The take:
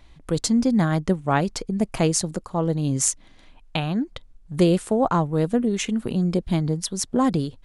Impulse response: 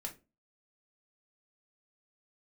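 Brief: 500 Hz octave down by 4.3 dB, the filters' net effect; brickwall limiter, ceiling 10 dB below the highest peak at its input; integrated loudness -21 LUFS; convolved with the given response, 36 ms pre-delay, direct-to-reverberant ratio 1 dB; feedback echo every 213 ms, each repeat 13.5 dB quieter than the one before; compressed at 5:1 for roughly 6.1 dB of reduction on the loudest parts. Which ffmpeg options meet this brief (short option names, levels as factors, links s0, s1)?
-filter_complex "[0:a]equalizer=f=500:t=o:g=-5.5,acompressor=threshold=0.0708:ratio=5,alimiter=limit=0.119:level=0:latency=1,aecho=1:1:213|426:0.211|0.0444,asplit=2[s0][s1];[1:a]atrim=start_sample=2205,adelay=36[s2];[s1][s2]afir=irnorm=-1:irlink=0,volume=1.12[s3];[s0][s3]amix=inputs=2:normalize=0,volume=1.88"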